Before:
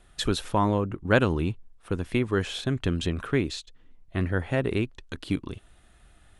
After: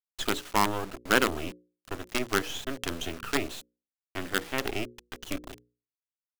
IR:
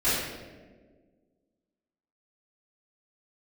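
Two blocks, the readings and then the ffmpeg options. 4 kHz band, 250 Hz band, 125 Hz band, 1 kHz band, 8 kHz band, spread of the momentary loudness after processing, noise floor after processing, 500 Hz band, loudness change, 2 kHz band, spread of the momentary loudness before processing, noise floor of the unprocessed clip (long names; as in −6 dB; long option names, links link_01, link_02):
+1.0 dB, −6.5 dB, −14.5 dB, +1.0 dB, +5.5 dB, 16 LU, below −85 dBFS, −5.0 dB, −3.0 dB, +1.5 dB, 11 LU, −57 dBFS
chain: -af "highpass=frequency=230:width=0.5412,highpass=frequency=230:width=1.3066,equalizer=frequency=590:width_type=q:width=4:gain=-9,equalizer=frequency=1300:width_type=q:width=4:gain=5,equalizer=frequency=3000:width_type=q:width=4:gain=6,equalizer=frequency=4700:width_type=q:width=4:gain=-8,lowpass=frequency=7600:width=0.5412,lowpass=frequency=7600:width=1.3066,acrusher=bits=4:dc=4:mix=0:aa=0.000001,bandreject=frequency=60:width_type=h:width=6,bandreject=frequency=120:width_type=h:width=6,bandreject=frequency=180:width_type=h:width=6,bandreject=frequency=240:width_type=h:width=6,bandreject=frequency=300:width_type=h:width=6,bandreject=frequency=360:width_type=h:width=6,bandreject=frequency=420:width_type=h:width=6,bandreject=frequency=480:width_type=h:width=6,bandreject=frequency=540:width_type=h:width=6"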